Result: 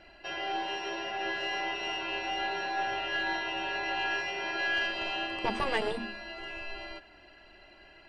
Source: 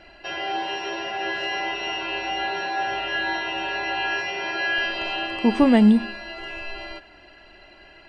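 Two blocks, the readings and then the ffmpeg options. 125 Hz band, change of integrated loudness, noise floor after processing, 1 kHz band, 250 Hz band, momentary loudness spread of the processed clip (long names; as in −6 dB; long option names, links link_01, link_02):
−16.5 dB, −9.0 dB, −56 dBFS, −6.0 dB, −20.0 dB, 10 LU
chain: -af "aeval=exprs='0.562*(cos(1*acos(clip(val(0)/0.562,-1,1)))-cos(1*PI/2))+0.112*(cos(2*acos(clip(val(0)/0.562,-1,1)))-cos(2*PI/2))+0.0794*(cos(3*acos(clip(val(0)/0.562,-1,1)))-cos(3*PI/2))':channel_layout=same,afftfilt=real='re*lt(hypot(re,im),0.501)':imag='im*lt(hypot(re,im),0.501)':win_size=1024:overlap=0.75,volume=-1.5dB"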